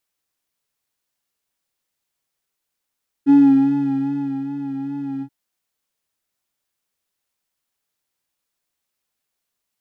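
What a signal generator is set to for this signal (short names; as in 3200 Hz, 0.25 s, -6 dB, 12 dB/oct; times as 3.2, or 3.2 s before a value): synth patch with vibrato C#4, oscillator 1 square, interval +19 st, oscillator 2 level -3.5 dB, sub -15 dB, filter bandpass, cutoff 110 Hz, Q 2.3, filter envelope 1.5 oct, filter decay 0.52 s, filter sustain 50%, attack 36 ms, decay 1.17 s, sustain -10 dB, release 0.07 s, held 1.96 s, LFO 2.5 Hz, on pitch 38 cents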